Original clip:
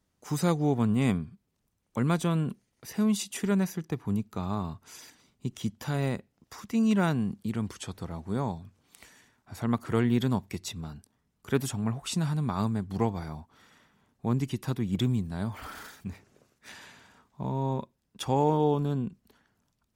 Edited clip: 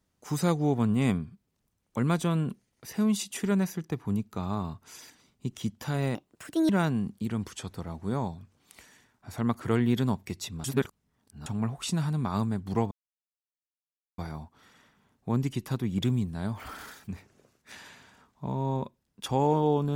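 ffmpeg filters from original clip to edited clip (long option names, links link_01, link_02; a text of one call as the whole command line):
ffmpeg -i in.wav -filter_complex "[0:a]asplit=6[link_01][link_02][link_03][link_04][link_05][link_06];[link_01]atrim=end=6.154[link_07];[link_02]atrim=start=6.15:end=6.93,asetpts=PTS-STARTPTS,asetrate=63504,aresample=44100[link_08];[link_03]atrim=start=6.926:end=10.882[link_09];[link_04]atrim=start=10.878:end=11.702,asetpts=PTS-STARTPTS,areverse[link_10];[link_05]atrim=start=11.698:end=13.15,asetpts=PTS-STARTPTS,afade=type=out:start_time=1.448:duration=0.004:curve=hsin,apad=pad_dur=1.27[link_11];[link_06]atrim=start=13.15,asetpts=PTS-STARTPTS,afade=type=in:duration=0.004:curve=hsin[link_12];[link_07][link_08]acrossfade=duration=0.004:curve1=hsin:curve2=hsin[link_13];[link_13][link_09]acrossfade=duration=0.004:curve1=hsin:curve2=hsin[link_14];[link_14][link_10]acrossfade=duration=0.004:curve1=hsin:curve2=hsin[link_15];[link_11][link_12]concat=n=2:v=0:a=1[link_16];[link_15][link_16]acrossfade=duration=0.004:curve1=hsin:curve2=hsin" out.wav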